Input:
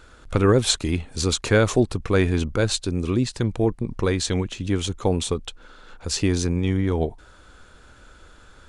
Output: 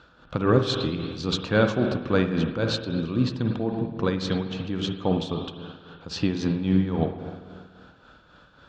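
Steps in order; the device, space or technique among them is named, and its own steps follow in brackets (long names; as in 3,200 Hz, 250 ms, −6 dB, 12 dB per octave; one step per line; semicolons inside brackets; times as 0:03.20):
combo amplifier with spring reverb and tremolo (spring reverb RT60 1.8 s, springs 48/53 ms, chirp 70 ms, DRR 4 dB; amplitude tremolo 3.7 Hz, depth 51%; loudspeaker in its box 83–4,600 Hz, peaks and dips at 86 Hz −9 dB, 160 Hz +5 dB, 400 Hz −6 dB, 2,100 Hz −9 dB)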